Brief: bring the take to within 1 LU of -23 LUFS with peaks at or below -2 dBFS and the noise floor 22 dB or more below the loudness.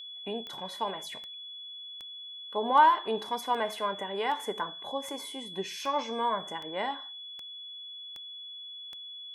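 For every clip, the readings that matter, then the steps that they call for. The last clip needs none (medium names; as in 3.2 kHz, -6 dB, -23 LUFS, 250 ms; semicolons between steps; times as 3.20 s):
clicks found 12; steady tone 3.4 kHz; tone level -41 dBFS; loudness -32.0 LUFS; peak level -10.5 dBFS; loudness target -23.0 LUFS
-> de-click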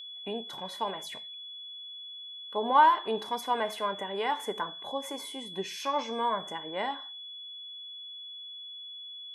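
clicks found 0; steady tone 3.4 kHz; tone level -41 dBFS
-> band-stop 3.4 kHz, Q 30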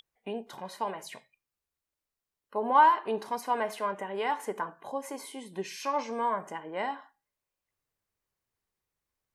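steady tone not found; loudness -30.5 LUFS; peak level -10.5 dBFS; loudness target -23.0 LUFS
-> trim +7.5 dB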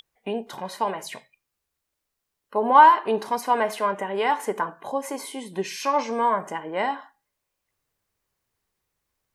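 loudness -23.0 LUFS; peak level -3.0 dBFS; noise floor -82 dBFS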